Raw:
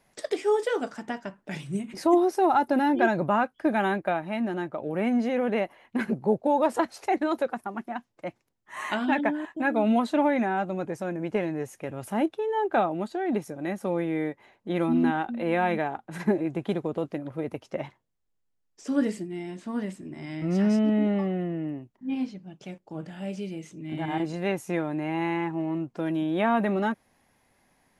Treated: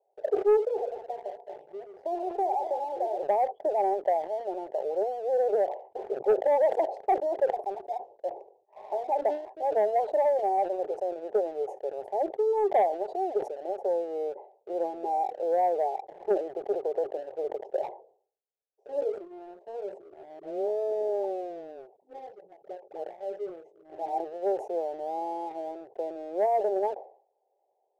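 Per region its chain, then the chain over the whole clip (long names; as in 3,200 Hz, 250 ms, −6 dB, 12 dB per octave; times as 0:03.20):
0:00.57–0:03.23: feedback delay that plays each chunk backwards 105 ms, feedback 42%, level −8 dB + low-shelf EQ 490 Hz −5 dB + downward compressor 2.5 to 1, threshold −27 dBFS
0:20.39–0:23.04: transient designer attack +5 dB, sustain 0 dB + all-pass dispersion highs, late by 55 ms, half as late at 430 Hz
whole clip: elliptic band-pass filter 400–810 Hz, stop band 40 dB; leveller curve on the samples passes 1; level that may fall only so fast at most 120 dB per second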